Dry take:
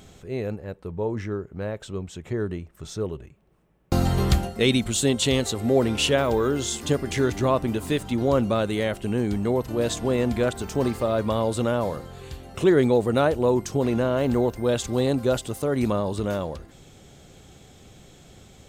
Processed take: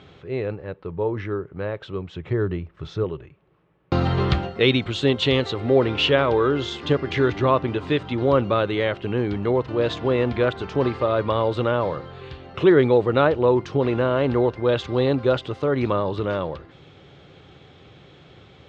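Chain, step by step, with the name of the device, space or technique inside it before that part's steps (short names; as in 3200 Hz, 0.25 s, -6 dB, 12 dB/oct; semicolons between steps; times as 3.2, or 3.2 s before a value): guitar cabinet (speaker cabinet 98–3800 Hz, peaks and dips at 220 Hz -10 dB, 690 Hz -4 dB, 1200 Hz +3 dB); 2.16–3.04 low shelf 150 Hz +7.5 dB; gain +4 dB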